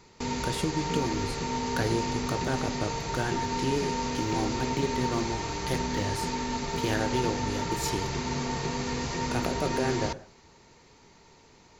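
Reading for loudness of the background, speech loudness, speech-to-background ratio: -31.5 LUFS, -33.0 LUFS, -1.5 dB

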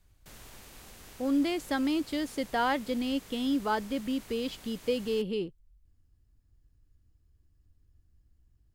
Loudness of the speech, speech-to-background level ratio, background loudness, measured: -31.0 LUFS, 19.0 dB, -50.0 LUFS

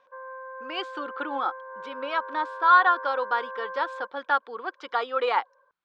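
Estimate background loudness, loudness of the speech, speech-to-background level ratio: -38.5 LUFS, -26.0 LUFS, 12.5 dB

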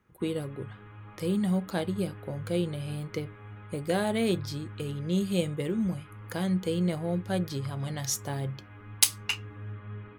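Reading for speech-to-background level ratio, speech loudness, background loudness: 15.5 dB, -30.5 LUFS, -46.0 LUFS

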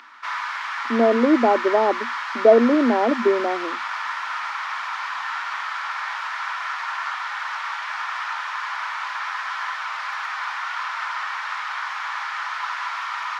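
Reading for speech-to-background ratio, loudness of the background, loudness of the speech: 8.5 dB, -27.5 LUFS, -19.0 LUFS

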